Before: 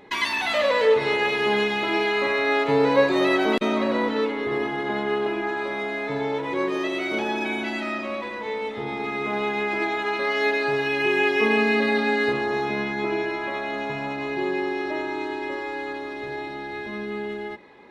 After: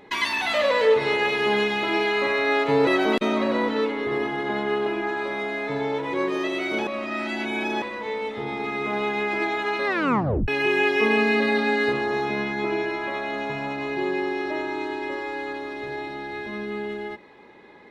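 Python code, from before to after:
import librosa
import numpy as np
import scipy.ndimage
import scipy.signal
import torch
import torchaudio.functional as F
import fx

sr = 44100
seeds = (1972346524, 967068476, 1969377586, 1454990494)

y = fx.edit(x, sr, fx.cut(start_s=2.87, length_s=0.4),
    fx.reverse_span(start_s=7.27, length_s=0.95),
    fx.tape_stop(start_s=10.26, length_s=0.62), tone=tone)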